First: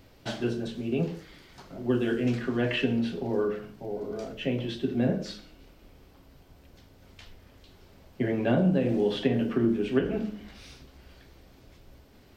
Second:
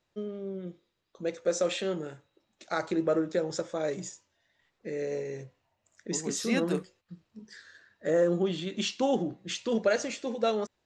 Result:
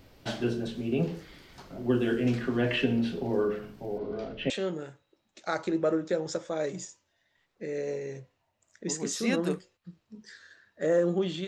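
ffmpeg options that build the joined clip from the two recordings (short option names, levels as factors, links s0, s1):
-filter_complex "[0:a]asettb=1/sr,asplit=3[s0][s1][s2];[s0]atrim=end=3.984[s3];[s1]atrim=start=3.98:end=4.5,asetpts=PTS-STARTPTS,afade=t=in:d=0.004:c=qsin,afade=t=out:st=0.516:d=0.004:c=qsin,lowpass=f=4500:w=0.5412,lowpass=f=4500:w=1.3066[s4];[s2]atrim=start=4.496[s5];[s3][s4]acrossfade=d=0.004:c1=hsin:c2=qsin[s6];[s6][s5]acrossfade=d=0.004:c1=qsin:c2=hsin,apad=whole_dur=11.47,atrim=end=11.47,atrim=end=4.502[s7];[1:a]atrim=start=1.738:end=8.71[s8];[s7][s8]acrossfade=d=0.004:c1=hsin:c2=hsin"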